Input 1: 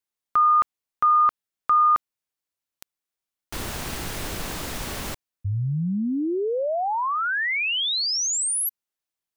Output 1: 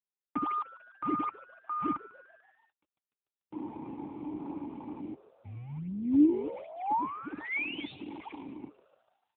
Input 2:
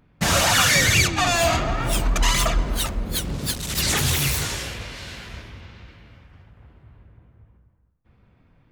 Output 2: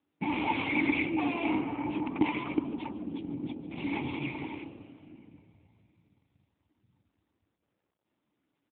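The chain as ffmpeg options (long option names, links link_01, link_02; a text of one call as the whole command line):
ffmpeg -i in.wav -filter_complex "[0:a]afwtdn=0.0251,asplit=2[link_01][link_02];[link_02]acrusher=samples=41:mix=1:aa=0.000001:lfo=1:lforange=65.6:lforate=1.3,volume=-10.5dB[link_03];[link_01][link_03]amix=inputs=2:normalize=0,aeval=exprs='(mod(3.16*val(0)+1,2)-1)/3.16':channel_layout=same,asplit=3[link_04][link_05][link_06];[link_04]bandpass=frequency=300:width_type=q:width=8,volume=0dB[link_07];[link_05]bandpass=frequency=870:width_type=q:width=8,volume=-6dB[link_08];[link_06]bandpass=frequency=2240:width_type=q:width=8,volume=-9dB[link_09];[link_07][link_08][link_09]amix=inputs=3:normalize=0,asplit=6[link_10][link_11][link_12][link_13][link_14][link_15];[link_11]adelay=147,afreqshift=120,volume=-19.5dB[link_16];[link_12]adelay=294,afreqshift=240,volume=-23.9dB[link_17];[link_13]adelay=441,afreqshift=360,volume=-28.4dB[link_18];[link_14]adelay=588,afreqshift=480,volume=-32.8dB[link_19];[link_15]adelay=735,afreqshift=600,volume=-37.2dB[link_20];[link_10][link_16][link_17][link_18][link_19][link_20]amix=inputs=6:normalize=0,volume=5dB" -ar 8000 -c:a libopencore_amrnb -b:a 7950 out.amr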